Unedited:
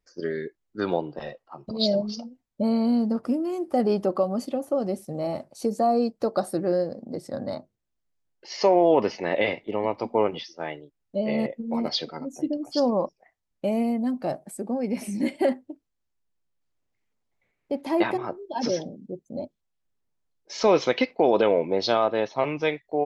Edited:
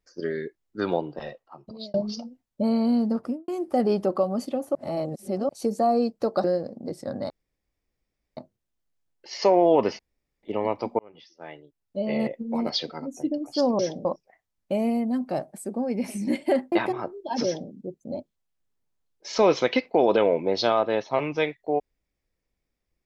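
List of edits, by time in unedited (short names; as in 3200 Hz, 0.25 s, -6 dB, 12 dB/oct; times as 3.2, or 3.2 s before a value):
1.05–1.94 fade out equal-power
3.19–3.48 studio fade out
4.75–5.49 reverse
6.44–6.7 cut
7.56 insert room tone 1.07 s
9.18–9.62 room tone
10.18–11.43 fade in
15.65–17.97 cut
18.69–18.95 copy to 12.98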